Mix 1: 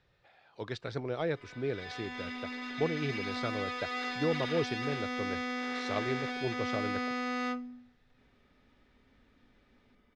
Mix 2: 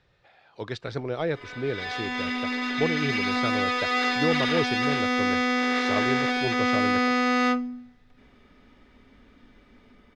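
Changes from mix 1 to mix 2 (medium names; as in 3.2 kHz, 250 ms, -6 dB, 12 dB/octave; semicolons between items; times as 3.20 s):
speech +5.0 dB; background +11.5 dB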